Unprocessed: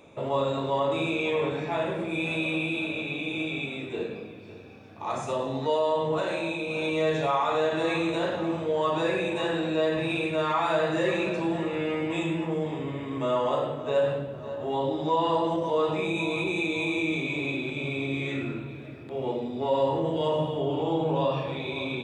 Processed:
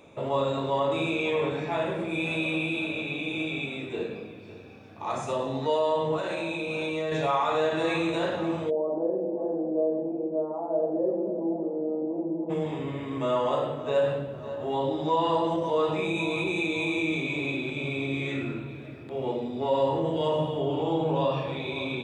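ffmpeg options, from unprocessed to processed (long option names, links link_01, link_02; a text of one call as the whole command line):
ffmpeg -i in.wav -filter_complex "[0:a]asettb=1/sr,asplit=3[link_01][link_02][link_03];[link_01]atrim=end=6.164[link_04];[link_02]atrim=start=6.16:end=7.12,asetpts=PTS-STARTPTS,afade=type=in:duration=0.004:curve=qsin,afade=type=out:start_time=0.956:duration=0.004:curve=qsin,acompressor=threshold=-26dB:ratio=6:attack=3.2:release=140:knee=1:detection=peak[link_05];[link_03]atrim=start=7.116[link_06];[link_04][link_05]acrossfade=duration=0.004:curve1=hsin:curve2=qsin[link_07];[link_07][link_06]acrossfade=duration=0.004:curve1=qsin:curve2=hsin,asplit=3[link_08][link_09][link_10];[link_08]afade=type=out:start_time=8.69:duration=0.02[link_11];[link_09]asuperpass=centerf=380:order=8:qfactor=0.72,afade=type=in:start_time=8.69:duration=0.02,afade=type=out:start_time=12.49:duration=0.02[link_12];[link_10]afade=type=in:start_time=12.49:duration=0.02[link_13];[link_11][link_12][link_13]amix=inputs=3:normalize=0" out.wav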